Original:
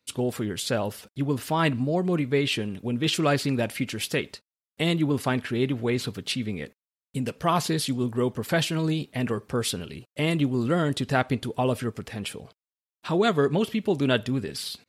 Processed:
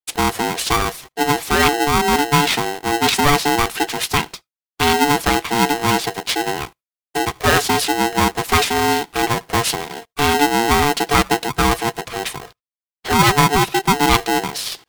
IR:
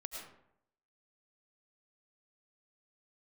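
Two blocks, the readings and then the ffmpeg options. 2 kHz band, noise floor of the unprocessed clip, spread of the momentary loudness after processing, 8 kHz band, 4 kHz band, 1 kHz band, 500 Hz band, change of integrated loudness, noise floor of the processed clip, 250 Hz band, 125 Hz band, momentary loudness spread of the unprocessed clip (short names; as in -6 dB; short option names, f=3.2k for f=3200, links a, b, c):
+13.0 dB, under -85 dBFS, 9 LU, +14.0 dB, +11.0 dB, +15.5 dB, +5.5 dB, +9.0 dB, under -85 dBFS, +4.5 dB, +3.0 dB, 10 LU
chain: -filter_complex "[0:a]agate=range=-33dB:threshold=-48dB:ratio=3:detection=peak,asplit=2[a][b];[1:a]atrim=start_sample=2205,atrim=end_sample=3528[c];[b][c]afir=irnorm=-1:irlink=0,volume=-16dB[d];[a][d]amix=inputs=2:normalize=0,aeval=exprs='val(0)*sgn(sin(2*PI*580*n/s))':c=same,volume=7.5dB"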